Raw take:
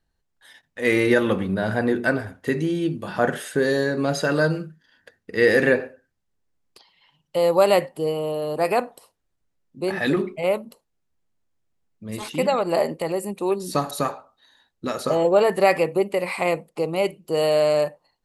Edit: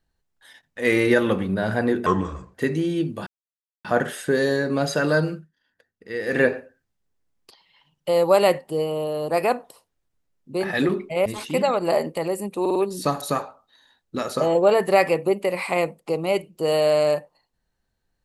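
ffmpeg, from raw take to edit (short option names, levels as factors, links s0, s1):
-filter_complex "[0:a]asplit=10[s0][s1][s2][s3][s4][s5][s6][s7][s8][s9];[s0]atrim=end=2.064[s10];[s1]atrim=start=2.06:end=2.4,asetpts=PTS-STARTPTS,asetrate=30870,aresample=44100[s11];[s2]atrim=start=2.396:end=3.12,asetpts=PTS-STARTPTS,afade=t=out:st=0.72:d=0.004:c=hsin,apad=pad_dur=0.58[s12];[s3]atrim=start=3.12:end=4.77,asetpts=PTS-STARTPTS,afade=t=in:d=0.004:c=hsin,afade=t=out:st=1.49:d=0.16:silence=0.251189[s13];[s4]atrim=start=4.77:end=5.53,asetpts=PTS-STARTPTS,volume=0.251[s14];[s5]atrim=start=5.53:end=10.532,asetpts=PTS-STARTPTS,afade=t=in:d=0.16:silence=0.251189[s15];[s6]atrim=start=12.098:end=13.502[s16];[s7]atrim=start=13.448:end=13.502[s17];[s8]atrim=start=13.448:end=13.502[s18];[s9]atrim=start=13.448[s19];[s10][s11]acrossfade=d=0.004:c1=hsin:c2=hsin[s20];[s12][s13][s14][s15]concat=n=4:v=0:a=1[s21];[s20][s21]acrossfade=d=0.004:c1=hsin:c2=hsin[s22];[s22][s16]acrossfade=d=0.004:c1=hsin:c2=hsin[s23];[s23][s17]acrossfade=d=0.004:c1=hsin:c2=hsin[s24];[s24][s18]acrossfade=d=0.004:c1=hsin:c2=hsin[s25];[s25][s19]acrossfade=d=0.004:c1=hsin:c2=hsin"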